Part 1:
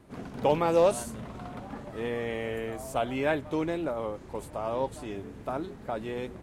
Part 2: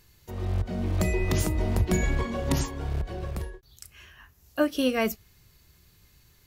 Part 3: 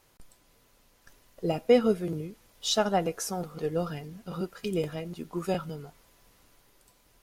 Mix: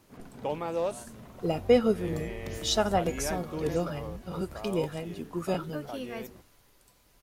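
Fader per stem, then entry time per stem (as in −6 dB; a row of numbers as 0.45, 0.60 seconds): −8.0, −14.5, −0.5 decibels; 0.00, 1.15, 0.00 seconds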